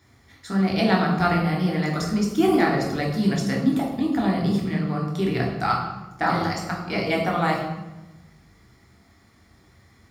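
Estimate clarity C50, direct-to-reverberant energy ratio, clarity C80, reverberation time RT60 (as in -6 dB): 4.0 dB, -1.5 dB, 6.5 dB, 1.1 s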